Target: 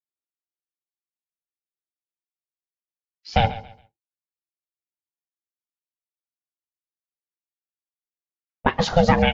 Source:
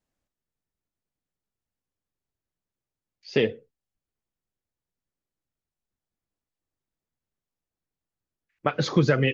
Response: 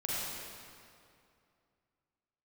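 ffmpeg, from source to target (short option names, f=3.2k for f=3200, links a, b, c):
-af "aecho=1:1:138|276|414:0.158|0.0412|0.0107,aeval=exprs='val(0)*sin(2*PI*340*n/s)':c=same,agate=range=-33dB:threshold=-56dB:ratio=3:detection=peak,volume=7dB"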